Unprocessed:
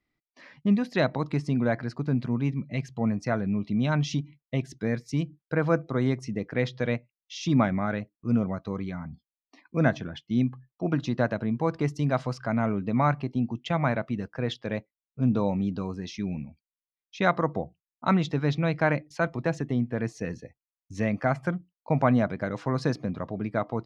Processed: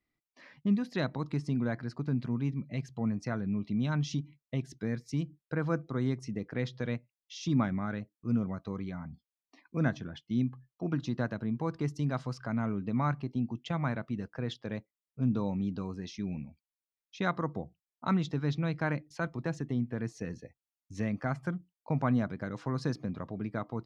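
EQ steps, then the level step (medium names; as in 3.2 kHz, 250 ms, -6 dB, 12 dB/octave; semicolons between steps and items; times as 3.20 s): dynamic bell 630 Hz, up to -7 dB, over -39 dBFS, Q 1.4; dynamic bell 2.3 kHz, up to -5 dB, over -48 dBFS, Q 1.5; -4.5 dB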